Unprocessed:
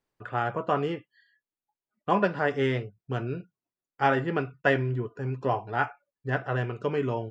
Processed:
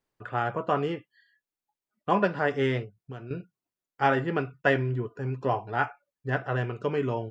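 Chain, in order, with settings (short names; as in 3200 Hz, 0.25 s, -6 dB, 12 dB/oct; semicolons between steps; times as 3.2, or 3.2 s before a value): 2.84–3.31 compressor 2.5:1, threshold -42 dBFS, peak gain reduction 11.5 dB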